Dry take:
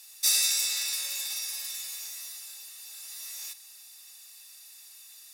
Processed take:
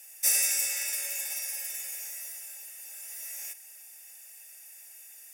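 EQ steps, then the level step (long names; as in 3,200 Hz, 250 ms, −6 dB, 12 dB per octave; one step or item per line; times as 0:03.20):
low-shelf EQ 460 Hz +11.5 dB
phaser with its sweep stopped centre 1,100 Hz, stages 6
+3.0 dB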